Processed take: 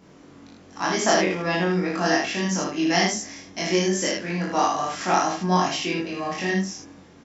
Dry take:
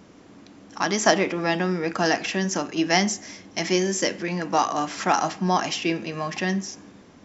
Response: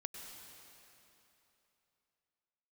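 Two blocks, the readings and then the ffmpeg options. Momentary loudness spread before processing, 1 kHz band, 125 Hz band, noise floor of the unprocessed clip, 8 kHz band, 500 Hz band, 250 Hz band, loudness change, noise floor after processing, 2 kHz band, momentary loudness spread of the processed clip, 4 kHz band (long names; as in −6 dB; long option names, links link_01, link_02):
9 LU, +0.5 dB, +1.5 dB, −50 dBFS, can't be measured, +0.5 dB, +1.0 dB, +0.5 dB, −50 dBFS, +0.5 dB, 8 LU, +0.5 dB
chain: -filter_complex "[0:a]aecho=1:1:35|78:0.708|0.668,asplit=2[link_01][link_02];[1:a]atrim=start_sample=2205,atrim=end_sample=3087,adelay=22[link_03];[link_02][link_03]afir=irnorm=-1:irlink=0,volume=4.5dB[link_04];[link_01][link_04]amix=inputs=2:normalize=0,volume=-5.5dB"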